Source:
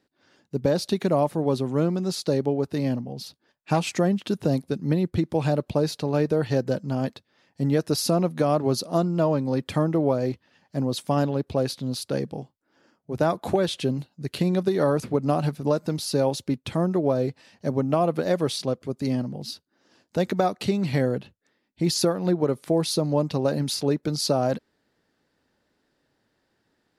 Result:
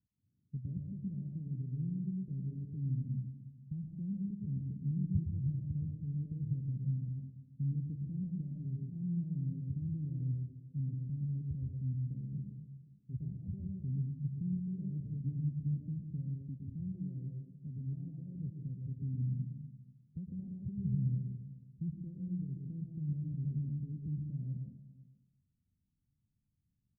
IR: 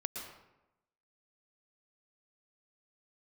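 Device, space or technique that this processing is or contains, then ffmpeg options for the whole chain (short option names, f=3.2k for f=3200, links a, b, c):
club heard from the street: -filter_complex "[0:a]alimiter=limit=-19dB:level=0:latency=1:release=112,lowpass=f=150:w=0.5412,lowpass=f=150:w=1.3066[a];[1:a]atrim=start_sample=2205[b];[a][b]afir=irnorm=-1:irlink=0,asettb=1/sr,asplit=3[c][d][e];[c]atrim=end=16.424[f];[d]atrim=start=16.42:end=18.35,asetpts=PTS-STARTPTS,afade=t=in:d=0.004:c=qsin,afade=t=out:st=1.926:d=0.004:c=qsin,lowshelf=f=160:g=-6[g];[e]atrim=start=18.346[h];[f][g]acrossfade=d=0.004:c1=hsin:c2=qsin[i];[i][h]acrossfade=d=0.004:c1=qsin:c2=hsin,aecho=1:1:488:0.0891"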